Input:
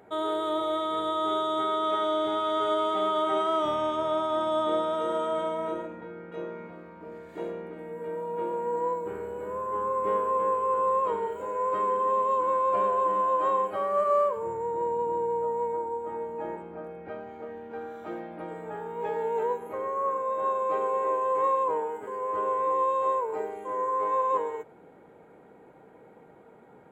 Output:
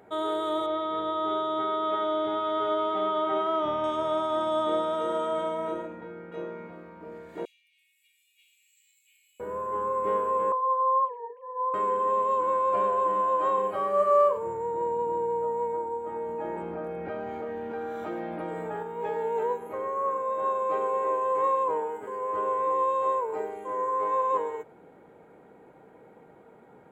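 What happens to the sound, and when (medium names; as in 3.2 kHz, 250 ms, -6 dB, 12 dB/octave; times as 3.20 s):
0.66–3.84 s: distance through air 180 m
7.45–9.40 s: steep high-pass 2.4 kHz 72 dB/octave
10.52–11.74 s: formants replaced by sine waves
13.54–14.38 s: doubling 36 ms -6 dB
16.16–18.83 s: level flattener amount 70%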